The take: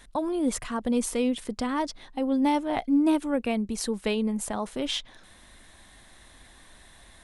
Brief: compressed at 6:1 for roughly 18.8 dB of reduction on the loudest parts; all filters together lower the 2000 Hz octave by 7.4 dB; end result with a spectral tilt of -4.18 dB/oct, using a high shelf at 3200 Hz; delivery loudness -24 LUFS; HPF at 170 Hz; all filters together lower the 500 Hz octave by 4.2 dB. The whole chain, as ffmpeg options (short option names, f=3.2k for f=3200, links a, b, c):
-af "highpass=170,equalizer=f=500:t=o:g=-4.5,equalizer=f=2k:t=o:g=-6,highshelf=f=3.2k:g=-8.5,acompressor=threshold=-42dB:ratio=6,volume=20.5dB"